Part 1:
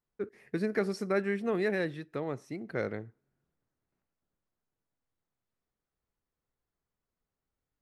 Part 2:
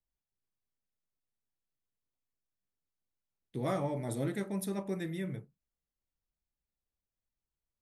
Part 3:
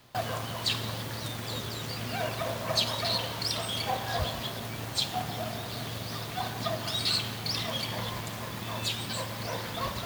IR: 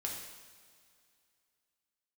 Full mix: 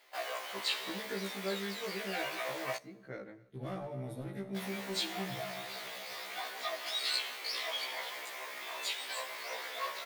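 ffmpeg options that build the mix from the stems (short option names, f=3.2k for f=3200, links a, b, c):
-filter_complex "[0:a]adelay=350,volume=-8.5dB,asplit=2[a][b];[b]volume=-23dB[c];[1:a]equalizer=f=7.7k:t=o:w=0.61:g=-12.5,asoftclip=type=hard:threshold=-29dB,volume=-8dB,asplit=3[d][e][f];[e]volume=-5.5dB[g];[f]volume=-14dB[h];[2:a]highpass=f=430:w=0.5412,highpass=f=430:w=1.3066,equalizer=f=2.1k:t=o:w=0.52:g=8.5,volume=-4dB,asplit=3[i][j][k];[i]atrim=end=2.77,asetpts=PTS-STARTPTS,afade=t=out:st=2.766:d=0.004:c=hsin[l];[j]atrim=start=2.77:end=4.56,asetpts=PTS-STARTPTS,volume=0[m];[k]atrim=start=4.56,asetpts=PTS-STARTPTS,afade=t=in:d=0.004:c=hsin[n];[l][m][n]concat=n=3:v=0:a=1,asplit=2[o][p];[p]volume=-20.5dB[q];[3:a]atrim=start_sample=2205[r];[g][q]amix=inputs=2:normalize=0[s];[s][r]afir=irnorm=-1:irlink=0[t];[c][h]amix=inputs=2:normalize=0,aecho=0:1:264|528|792|1056|1320|1584|1848|2112|2376:1|0.57|0.325|0.185|0.106|0.0602|0.0343|0.0195|0.0111[u];[a][d][o][t][u]amix=inputs=5:normalize=0,afftfilt=real='re*1.73*eq(mod(b,3),0)':imag='im*1.73*eq(mod(b,3),0)':win_size=2048:overlap=0.75"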